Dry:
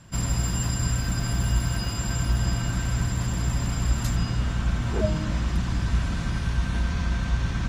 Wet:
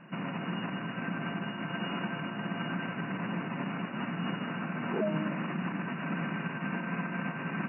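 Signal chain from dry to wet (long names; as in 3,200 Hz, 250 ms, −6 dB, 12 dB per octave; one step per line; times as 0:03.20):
brickwall limiter −22 dBFS, peak gain reduction 11.5 dB
linear-phase brick-wall band-pass 150–2,900 Hz
level +3 dB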